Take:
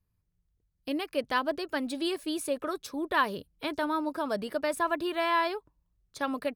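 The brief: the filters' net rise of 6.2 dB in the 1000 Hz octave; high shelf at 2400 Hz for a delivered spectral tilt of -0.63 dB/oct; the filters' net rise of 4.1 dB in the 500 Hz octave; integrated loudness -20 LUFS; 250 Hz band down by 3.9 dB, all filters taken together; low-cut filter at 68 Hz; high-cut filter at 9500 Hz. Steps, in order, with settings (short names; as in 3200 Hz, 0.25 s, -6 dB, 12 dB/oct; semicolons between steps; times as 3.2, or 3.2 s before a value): HPF 68 Hz; LPF 9500 Hz; bell 250 Hz -8.5 dB; bell 500 Hz +5 dB; bell 1000 Hz +7 dB; high shelf 2400 Hz -5.5 dB; gain +7.5 dB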